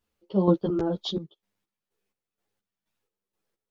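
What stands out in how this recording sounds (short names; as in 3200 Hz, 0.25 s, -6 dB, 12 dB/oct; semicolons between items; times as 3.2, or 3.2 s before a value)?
chopped level 2.1 Hz, depth 65%, duty 45%; a shimmering, thickened sound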